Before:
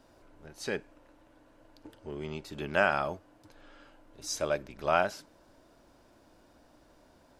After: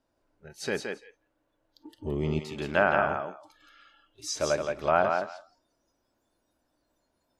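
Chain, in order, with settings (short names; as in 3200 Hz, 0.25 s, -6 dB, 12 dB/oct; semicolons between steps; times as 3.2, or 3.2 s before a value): treble ducked by the level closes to 1700 Hz, closed at -23 dBFS; thinning echo 0.17 s, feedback 17%, high-pass 220 Hz, level -4 dB; spectral noise reduction 19 dB; 1.98–2.4 low shelf 330 Hz +11 dB; gain +3 dB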